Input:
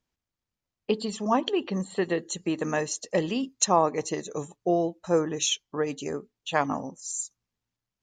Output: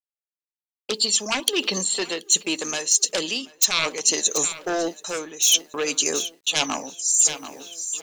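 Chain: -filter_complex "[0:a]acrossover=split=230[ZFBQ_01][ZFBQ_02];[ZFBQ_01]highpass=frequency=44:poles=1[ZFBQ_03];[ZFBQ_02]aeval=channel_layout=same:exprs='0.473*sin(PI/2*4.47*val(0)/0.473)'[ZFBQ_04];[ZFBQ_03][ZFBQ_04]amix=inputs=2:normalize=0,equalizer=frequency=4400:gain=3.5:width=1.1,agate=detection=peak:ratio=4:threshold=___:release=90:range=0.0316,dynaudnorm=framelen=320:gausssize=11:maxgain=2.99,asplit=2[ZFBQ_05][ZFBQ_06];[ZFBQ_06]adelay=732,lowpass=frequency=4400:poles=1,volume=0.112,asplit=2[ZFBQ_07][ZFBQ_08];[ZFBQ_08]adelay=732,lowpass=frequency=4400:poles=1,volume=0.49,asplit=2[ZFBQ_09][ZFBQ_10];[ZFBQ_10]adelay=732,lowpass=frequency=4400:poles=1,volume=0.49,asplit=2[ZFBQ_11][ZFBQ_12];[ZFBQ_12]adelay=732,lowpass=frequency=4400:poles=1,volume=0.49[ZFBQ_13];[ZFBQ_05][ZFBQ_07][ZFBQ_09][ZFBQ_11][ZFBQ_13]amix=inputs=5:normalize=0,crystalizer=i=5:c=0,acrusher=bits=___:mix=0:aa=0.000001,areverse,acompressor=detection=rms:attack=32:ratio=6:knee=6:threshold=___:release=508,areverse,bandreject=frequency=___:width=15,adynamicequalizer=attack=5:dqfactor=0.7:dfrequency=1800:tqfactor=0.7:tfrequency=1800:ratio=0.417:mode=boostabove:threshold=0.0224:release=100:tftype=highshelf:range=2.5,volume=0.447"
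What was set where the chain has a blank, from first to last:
0.0251, 7, 0.158, 1900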